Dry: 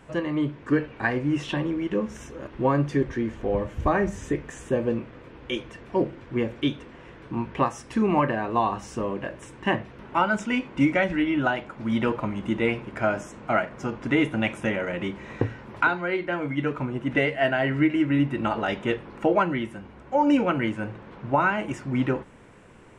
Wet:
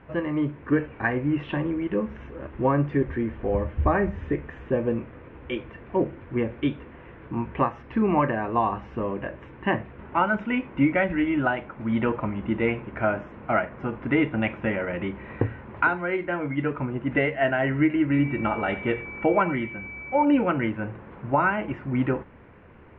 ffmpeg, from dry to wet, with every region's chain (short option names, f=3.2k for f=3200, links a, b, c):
-filter_complex "[0:a]asettb=1/sr,asplit=3[a][b][c];[a]atrim=end=18.124[d];[b]atrim=start=18.12:end=20.25,asetpts=PTS-STARTPTS,afade=t=in:d=0.004:c=qsin,afade=t=out:st=2.126:d=0.004:c=qsin,aeval=exprs='val(0)+0.0158*sin(2*PI*2300*n/s)':c=same,aecho=1:1:87:0.15,atrim=end_sample=93933[e];[c]atrim=start=20.246[f];[d][e]acrossfade=d=0.004:c1=hsin:c2=qsin[g];[g][f]acrossfade=d=0.004:c1=qsin:c2=hsin,lowpass=f=2.6k:w=0.5412,lowpass=f=2.6k:w=1.3066,equalizer=f=77:t=o:w=0.32:g=12"